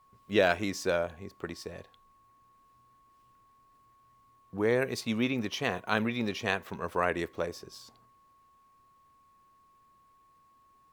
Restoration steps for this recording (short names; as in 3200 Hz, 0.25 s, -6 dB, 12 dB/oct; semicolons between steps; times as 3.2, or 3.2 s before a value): notch 1100 Hz, Q 30